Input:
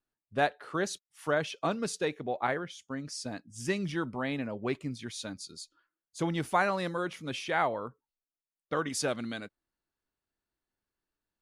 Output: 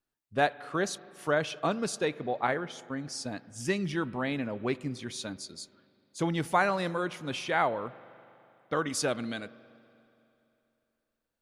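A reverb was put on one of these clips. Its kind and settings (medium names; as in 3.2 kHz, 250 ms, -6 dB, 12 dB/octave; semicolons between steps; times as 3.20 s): spring tank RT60 2.9 s, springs 40/48 ms, chirp 35 ms, DRR 18.5 dB; trim +1.5 dB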